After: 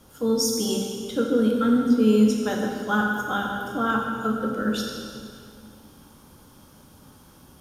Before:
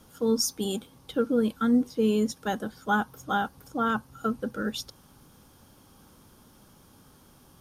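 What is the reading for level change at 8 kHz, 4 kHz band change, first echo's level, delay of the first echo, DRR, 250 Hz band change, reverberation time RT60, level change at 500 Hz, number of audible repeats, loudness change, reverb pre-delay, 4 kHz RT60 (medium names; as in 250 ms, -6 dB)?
+4.0 dB, +4.0 dB, no echo, no echo, -1.0 dB, +5.5 dB, 2.3 s, +4.0 dB, no echo, +5.0 dB, 11 ms, 1.9 s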